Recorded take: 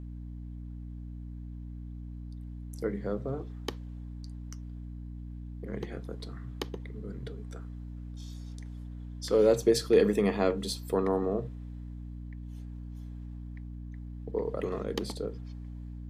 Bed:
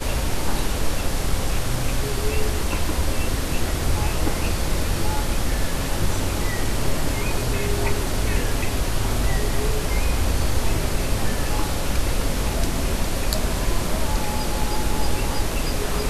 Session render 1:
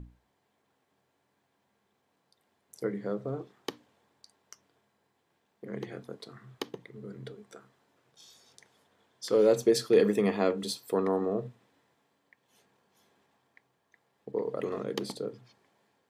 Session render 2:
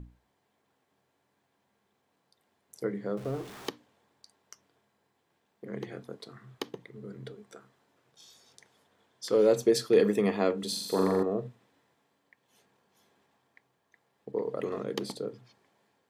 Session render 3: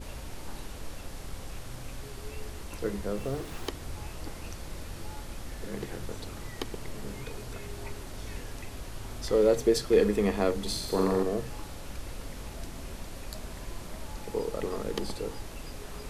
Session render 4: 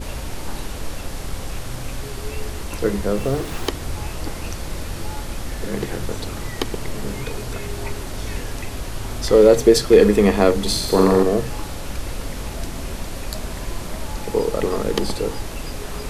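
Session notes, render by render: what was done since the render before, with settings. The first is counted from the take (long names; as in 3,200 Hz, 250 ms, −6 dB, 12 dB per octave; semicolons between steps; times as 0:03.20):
mains-hum notches 60/120/180/240/300 Hz
0:03.17–0:03.69: converter with a step at zero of −41.5 dBFS; 0:10.68–0:11.23: flutter between parallel walls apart 7.3 metres, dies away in 1.1 s
mix in bed −17.5 dB
level +11.5 dB; brickwall limiter −1 dBFS, peak gain reduction 2 dB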